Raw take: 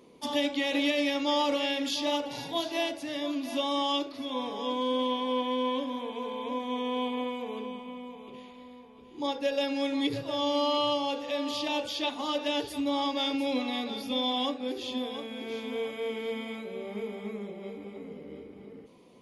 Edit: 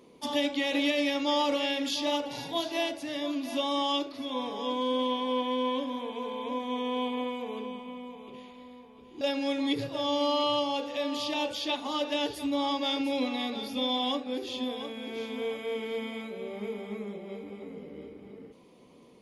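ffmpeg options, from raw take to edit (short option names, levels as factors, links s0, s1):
-filter_complex "[0:a]asplit=2[s0][s1];[s0]atrim=end=9.212[s2];[s1]atrim=start=9.548[s3];[s2][s3]acrossfade=d=0.004:c1=hsin:c2=hsin"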